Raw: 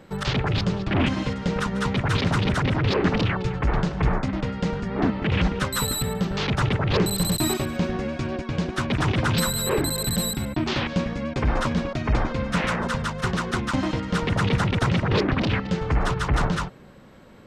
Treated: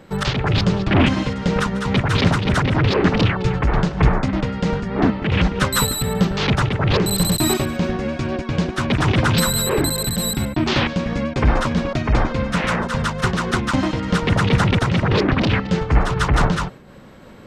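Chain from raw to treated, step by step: random flutter of the level, depth 60%; trim +8 dB

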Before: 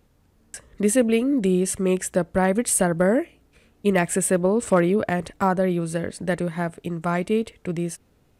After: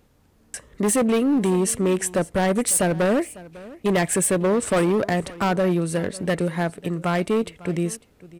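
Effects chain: bass shelf 130 Hz -4 dB; hard clipper -19.5 dBFS, distortion -10 dB; on a send: delay 550 ms -20 dB; on the sum: trim +3.5 dB

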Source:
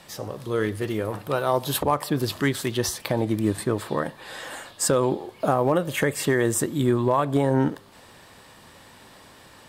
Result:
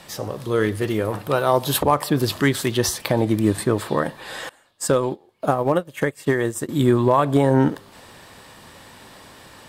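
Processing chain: 4.49–6.69 s: upward expansion 2.5:1, over -33 dBFS; trim +4.5 dB

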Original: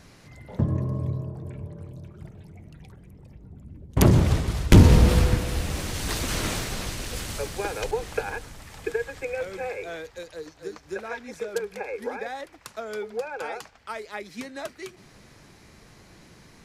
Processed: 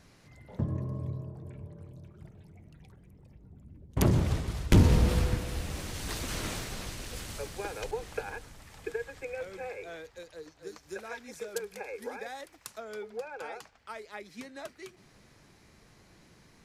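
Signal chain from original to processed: 10.67–12.78 s: treble shelf 4.8 kHz +10.5 dB; trim -7.5 dB

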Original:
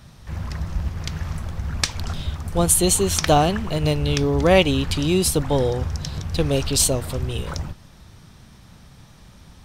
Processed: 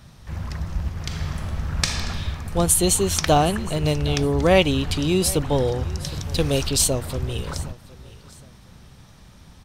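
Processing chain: 6.05–6.69 s: peaking EQ 14 kHz +7 dB 2.4 oct; feedback delay 764 ms, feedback 29%, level -20 dB; 0.99–1.99 s: reverb throw, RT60 2.4 s, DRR 0.5 dB; trim -1 dB

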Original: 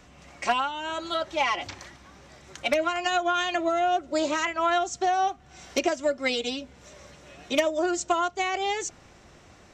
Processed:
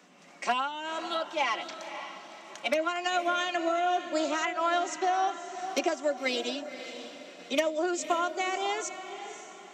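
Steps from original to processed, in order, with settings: steep high-pass 170 Hz 72 dB/octave; on a send: echo that smears into a reverb 543 ms, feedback 40%, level -10.5 dB; on the sum: trim -3.5 dB

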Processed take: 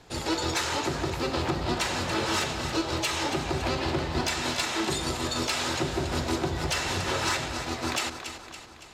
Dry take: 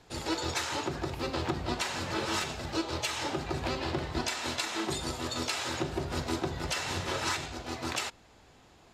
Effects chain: two-band feedback delay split 710 Hz, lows 213 ms, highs 281 ms, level -10 dB; sine folder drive 4 dB, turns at -16 dBFS; trim -3 dB

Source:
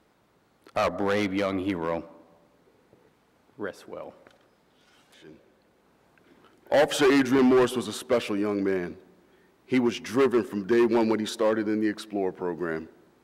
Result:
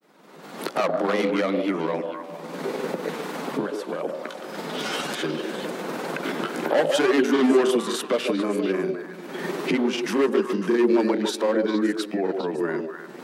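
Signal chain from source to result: recorder AGC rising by 47 dB/s; steep high-pass 150 Hz 96 dB/octave; in parallel at +3 dB: peak limiter -16.5 dBFS, peak gain reduction 10 dB; on the sum: repeats whose band climbs or falls 141 ms, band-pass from 480 Hz, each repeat 1.4 oct, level -2 dB; granulator 100 ms, spray 19 ms, pitch spread up and down by 0 st; trim -4.5 dB

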